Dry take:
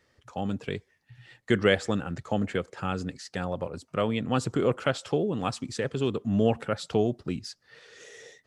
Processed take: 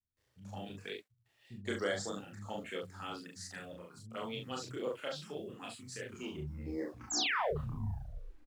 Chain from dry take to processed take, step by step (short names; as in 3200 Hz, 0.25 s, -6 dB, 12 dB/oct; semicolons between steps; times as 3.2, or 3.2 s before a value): tape stop at the end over 2.70 s; tilt +2.5 dB/oct; vocal rider within 4 dB 2 s; envelope phaser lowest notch 170 Hz, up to 2600 Hz, full sweep at -23.5 dBFS; painted sound fall, 6.93–7.34, 380–7900 Hz -24 dBFS; bit-crush 10-bit; chorus voices 2, 0.76 Hz, delay 29 ms, depth 2.7 ms; doubler 40 ms -4 dB; bands offset in time lows, highs 0.17 s, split 180 Hz; mismatched tape noise reduction decoder only; gain -7.5 dB